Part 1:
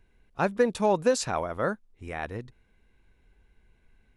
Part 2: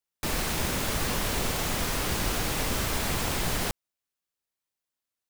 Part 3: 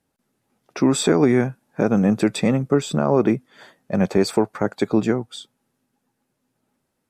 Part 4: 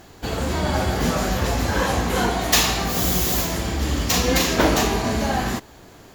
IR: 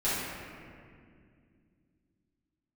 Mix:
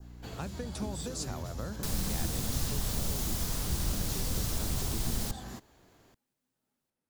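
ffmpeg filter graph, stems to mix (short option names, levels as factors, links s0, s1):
-filter_complex "[0:a]acompressor=threshold=0.0447:ratio=6,aeval=exprs='val(0)+0.00501*(sin(2*PI*60*n/s)+sin(2*PI*2*60*n/s)/2+sin(2*PI*3*60*n/s)/3+sin(2*PI*4*60*n/s)/4+sin(2*PI*5*60*n/s)/5)':c=same,volume=0.944[s0];[1:a]acrossover=split=170[s1][s2];[s2]acompressor=threshold=0.0316:ratio=6[s3];[s1][s3]amix=inputs=2:normalize=0,adelay=1600,volume=0.944[s4];[2:a]acompressor=threshold=0.1:ratio=6,volume=0.2[s5];[3:a]alimiter=limit=0.2:level=0:latency=1,volume=0.158[s6];[s0][s4][s5][s6]amix=inputs=4:normalize=0,adynamicequalizer=threshold=0.00282:dfrequency=2400:dqfactor=1.2:tfrequency=2400:tqfactor=1.2:attack=5:release=100:ratio=0.375:range=3:mode=cutabove:tftype=bell,acrossover=split=210|3000[s7][s8][s9];[s8]acompressor=threshold=0.00501:ratio=2.5[s10];[s7][s10][s9]amix=inputs=3:normalize=0"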